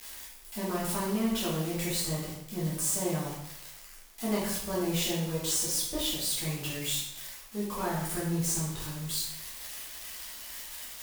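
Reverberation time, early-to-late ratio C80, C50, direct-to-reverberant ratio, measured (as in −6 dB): 0.85 s, 4.5 dB, 1.5 dB, −7.5 dB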